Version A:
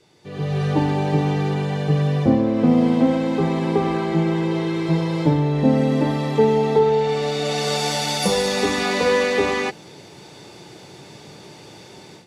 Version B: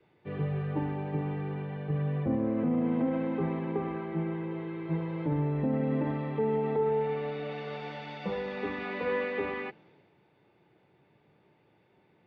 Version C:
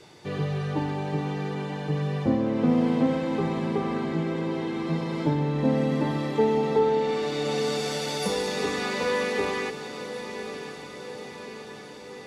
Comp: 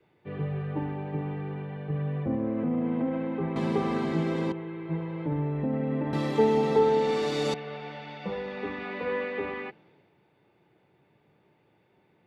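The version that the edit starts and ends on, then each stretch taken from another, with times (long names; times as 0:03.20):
B
0:03.56–0:04.52: punch in from C
0:06.13–0:07.54: punch in from C
not used: A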